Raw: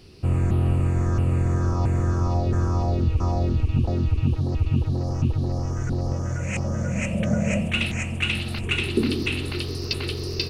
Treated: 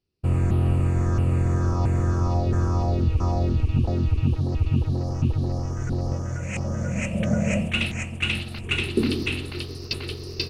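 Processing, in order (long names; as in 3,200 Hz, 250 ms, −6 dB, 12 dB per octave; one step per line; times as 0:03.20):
downward expander −23 dBFS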